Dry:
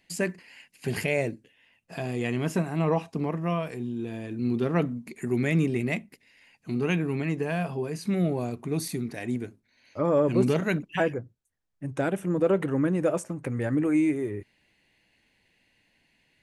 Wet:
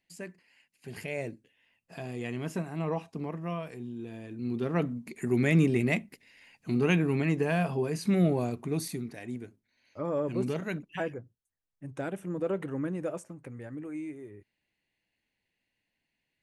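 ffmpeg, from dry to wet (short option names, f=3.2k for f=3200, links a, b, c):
-af "volume=1dB,afade=t=in:st=0.87:d=0.44:silence=0.446684,afade=t=in:st=4.41:d=1.19:silence=0.398107,afade=t=out:st=8.28:d=0.94:silence=0.354813,afade=t=out:st=12.89:d=0.81:silence=0.446684"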